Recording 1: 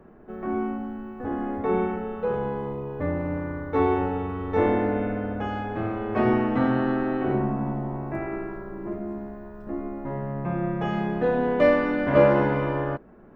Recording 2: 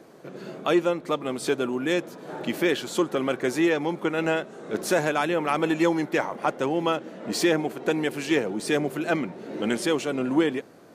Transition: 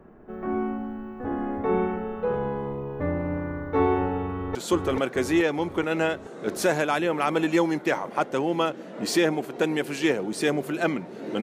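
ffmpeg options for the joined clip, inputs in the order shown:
-filter_complex "[0:a]apad=whole_dur=11.42,atrim=end=11.42,atrim=end=4.552[a];[1:a]atrim=start=2.818:end=9.69[b];[a][b]acrossfade=d=0.004:c1=hsin:c2=hsin,asplit=2[c][d];[d]afade=t=in:st=4.29:d=0.01,afade=t=out:st=4.55:d=0.01,aecho=0:1:430|860|1290|1720|2150|2580|3010|3440:0.891251|0.490188|0.269603|0.148282|0.081555|0.0448553|0.0246704|0.0135687[e];[c][e]amix=inputs=2:normalize=0"

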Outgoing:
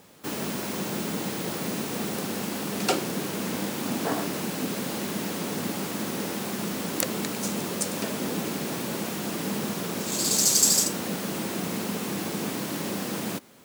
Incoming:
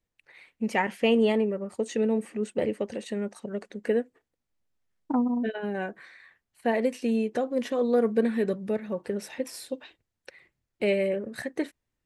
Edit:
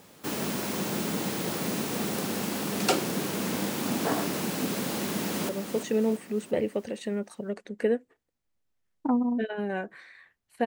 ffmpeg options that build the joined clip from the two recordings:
-filter_complex "[0:a]apad=whole_dur=10.66,atrim=end=10.66,atrim=end=5.492[a];[1:a]atrim=start=1.538:end=6.71[b];[a][b]acrossfade=d=0.004:c1=hsin:c2=hsin,asplit=2[c][d];[d]afade=t=in:st=4.99:d=0.01,afade=t=out:st=5.49:d=0.01,aecho=0:1:340|680|1020|1360|1700|2040:0.398107|0.199054|0.0995268|0.0497634|0.0248817|0.0124408[e];[c][e]amix=inputs=2:normalize=0"

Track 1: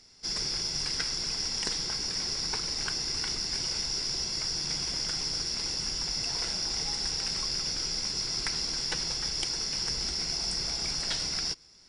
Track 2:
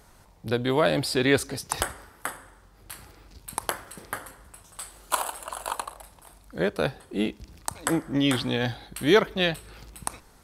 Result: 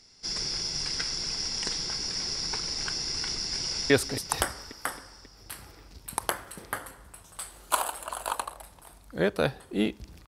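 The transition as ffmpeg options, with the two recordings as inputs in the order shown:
-filter_complex "[0:a]apad=whole_dur=10.27,atrim=end=10.27,atrim=end=3.902[a];[1:a]atrim=start=1.298:end=7.67[b];[a][b]acrossfade=d=0.004:c1=hsin:c2=hsin,asplit=2[c][d];[d]afade=t=in:st=3.61:d=0.01,afade=t=out:st=3.9:d=0.01,aecho=0:1:270|540|810|1080|1350|1620|1890|2160|2430:0.473151|0.307548|0.199906|0.129939|0.0844605|0.0548993|0.0356845|0.023195|0.0150767[e];[c][e]amix=inputs=2:normalize=0"

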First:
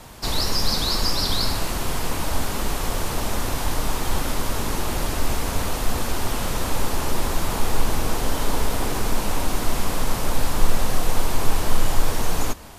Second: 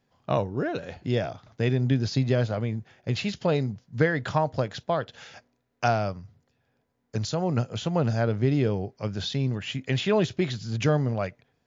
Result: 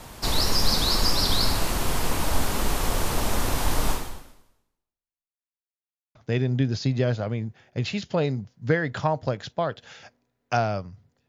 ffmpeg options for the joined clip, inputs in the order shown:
-filter_complex "[0:a]apad=whole_dur=11.28,atrim=end=11.28,asplit=2[a][b];[a]atrim=end=5.36,asetpts=PTS-STARTPTS,afade=t=out:st=3.91:d=1.45:c=exp[c];[b]atrim=start=5.36:end=6.15,asetpts=PTS-STARTPTS,volume=0[d];[1:a]atrim=start=1.46:end=6.59,asetpts=PTS-STARTPTS,afade=t=in:d=0.004:c=hsin[e];[c][d][e]concat=n=3:v=0:a=1"

